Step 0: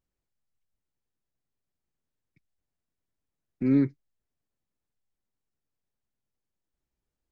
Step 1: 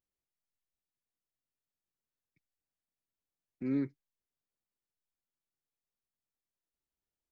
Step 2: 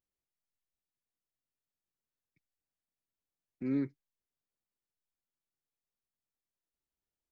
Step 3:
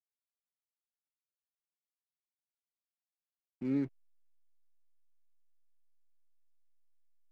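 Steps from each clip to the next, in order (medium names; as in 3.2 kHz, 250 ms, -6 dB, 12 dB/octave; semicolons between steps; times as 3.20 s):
bass shelf 190 Hz -7 dB; trim -7.5 dB
no audible change
hysteresis with a dead band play -47.5 dBFS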